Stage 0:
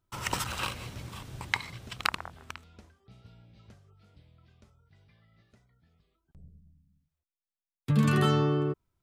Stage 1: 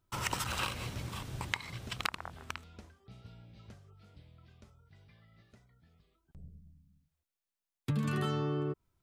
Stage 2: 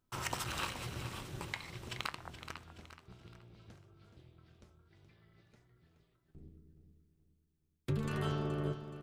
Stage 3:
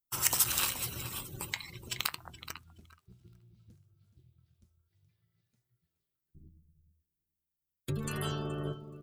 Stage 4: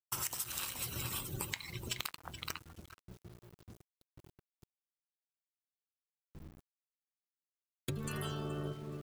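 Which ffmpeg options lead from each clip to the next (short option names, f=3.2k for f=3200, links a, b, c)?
-af "acompressor=threshold=-32dB:ratio=5,volume=1.5dB"
-filter_complex "[0:a]flanger=delay=5.5:depth=2.4:regen=82:speed=1.3:shape=sinusoidal,tremolo=f=240:d=0.824,asplit=2[a][b];[b]aecho=0:1:424|848|1272|1696:0.282|0.107|0.0407|0.0155[c];[a][c]amix=inputs=2:normalize=0,volume=4.5dB"
-af "aemphasis=mode=production:type=50fm,afftdn=nr=21:nf=-48,highshelf=f=3.3k:g=9"
-af "acompressor=threshold=-39dB:ratio=16,aeval=exprs='val(0)*gte(abs(val(0)),0.00141)':c=same,volume=4.5dB"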